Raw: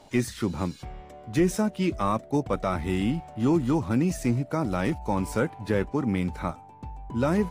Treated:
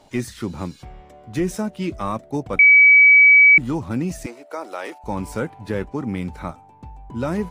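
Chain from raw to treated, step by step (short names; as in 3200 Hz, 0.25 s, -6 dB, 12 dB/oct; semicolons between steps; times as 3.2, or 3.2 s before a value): 2.59–3.58 bleep 2280 Hz -7 dBFS; 4.26–5.04 HPF 410 Hz 24 dB/oct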